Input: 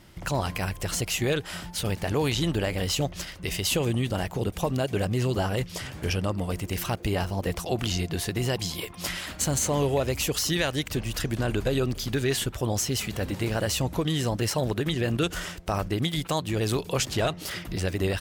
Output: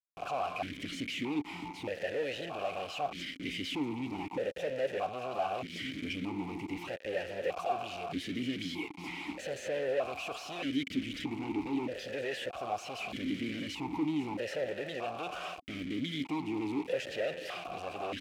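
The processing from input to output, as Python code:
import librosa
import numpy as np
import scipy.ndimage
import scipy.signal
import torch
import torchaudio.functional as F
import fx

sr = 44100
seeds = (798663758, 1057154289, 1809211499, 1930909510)

y = fx.quant_companded(x, sr, bits=2)
y = fx.vowel_held(y, sr, hz=1.6)
y = y * 10.0 ** (3.5 / 20.0)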